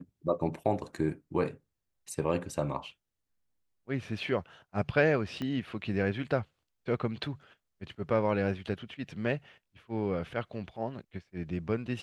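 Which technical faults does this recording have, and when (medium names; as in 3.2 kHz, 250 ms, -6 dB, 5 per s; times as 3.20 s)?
5.42 s: pop -23 dBFS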